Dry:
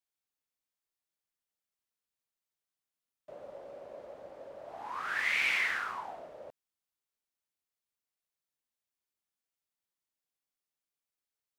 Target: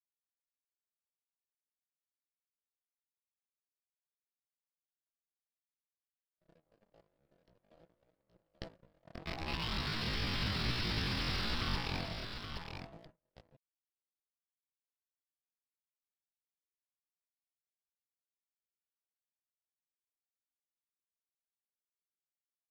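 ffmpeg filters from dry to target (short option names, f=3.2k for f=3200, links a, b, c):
-filter_complex "[0:a]anlmdn=0.00251,asplit=2[a][b];[b]acrusher=bits=6:mix=0:aa=0.000001,volume=-10dB[c];[a][c]amix=inputs=2:normalize=0,lowshelf=f=460:g=3.5,aecho=1:1:6.1:0.48,aresample=11025,aeval=exprs='(mod(42.2*val(0)+1,2)-1)/42.2':c=same,aresample=44100,asubboost=boost=7:cutoff=220,aeval=exprs='sgn(val(0))*max(abs(val(0))-0.00224,0)':c=same,agate=range=-30dB:threshold=-43dB:ratio=16:detection=peak,aecho=1:1:421:0.447,atempo=0.51"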